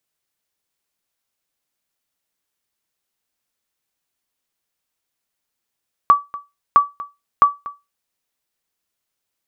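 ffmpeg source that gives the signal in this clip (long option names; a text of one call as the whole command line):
ffmpeg -f lavfi -i "aevalsrc='0.75*(sin(2*PI*1150*mod(t,0.66))*exp(-6.91*mod(t,0.66)/0.22)+0.112*sin(2*PI*1150*max(mod(t,0.66)-0.24,0))*exp(-6.91*max(mod(t,0.66)-0.24,0)/0.22))':duration=1.98:sample_rate=44100" out.wav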